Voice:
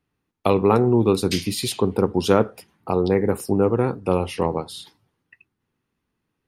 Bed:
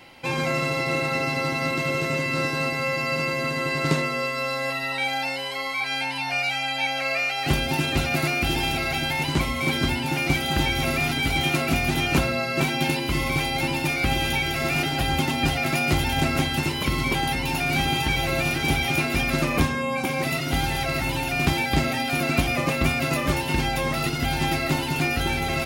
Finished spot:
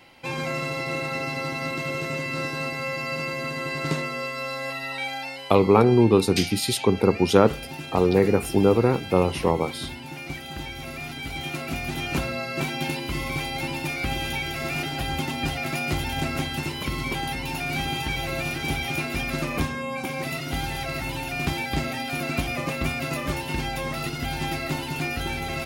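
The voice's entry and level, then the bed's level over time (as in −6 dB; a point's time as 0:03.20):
5.05 s, +0.5 dB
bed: 0:04.98 −4 dB
0:05.91 −12 dB
0:10.84 −12 dB
0:12.33 −4.5 dB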